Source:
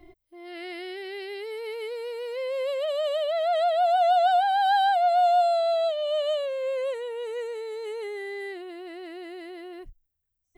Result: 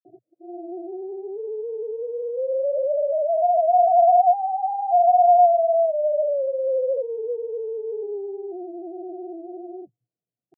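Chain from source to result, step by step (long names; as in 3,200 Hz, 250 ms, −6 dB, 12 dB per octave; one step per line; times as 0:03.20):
stylus tracing distortion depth 0.024 ms
Chebyshev band-pass filter 120–730 Hz, order 5
granular cloud, grains 20 per second, pitch spread up and down by 0 semitones
level +7 dB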